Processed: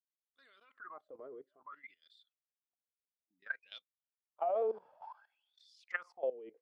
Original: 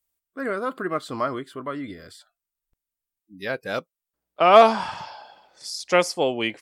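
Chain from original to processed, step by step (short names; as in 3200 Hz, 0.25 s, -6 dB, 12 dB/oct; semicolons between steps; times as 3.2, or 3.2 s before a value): wah 0.58 Hz 430–3700 Hz, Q 17; level quantiser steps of 17 dB; gain +2.5 dB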